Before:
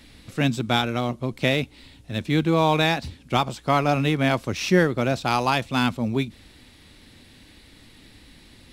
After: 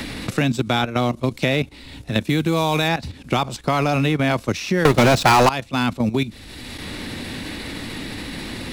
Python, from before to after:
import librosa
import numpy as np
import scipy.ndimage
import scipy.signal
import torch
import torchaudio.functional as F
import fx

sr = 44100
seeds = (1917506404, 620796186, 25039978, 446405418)

y = fx.high_shelf(x, sr, hz=fx.line((2.19, 8700.0), (2.87, 4700.0)), db=11.5, at=(2.19, 2.87), fade=0.02)
y = fx.leveller(y, sr, passes=5, at=(4.85, 5.49))
y = fx.level_steps(y, sr, step_db=13)
y = fx.notch(y, sr, hz=3200.0, q=27.0)
y = fx.band_squash(y, sr, depth_pct=70)
y = F.gain(torch.from_numpy(y), 7.0).numpy()